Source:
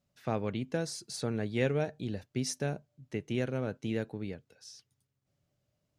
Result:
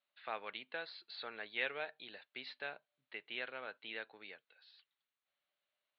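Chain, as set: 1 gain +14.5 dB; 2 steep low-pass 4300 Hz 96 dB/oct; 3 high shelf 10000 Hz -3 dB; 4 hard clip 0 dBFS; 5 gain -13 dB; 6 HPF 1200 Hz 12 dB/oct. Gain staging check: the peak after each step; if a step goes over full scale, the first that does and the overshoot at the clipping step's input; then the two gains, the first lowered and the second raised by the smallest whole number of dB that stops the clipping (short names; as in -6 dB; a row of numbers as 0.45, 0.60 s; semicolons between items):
-1.5, -1.5, -1.5, -1.5, -14.5, -22.5 dBFS; no overload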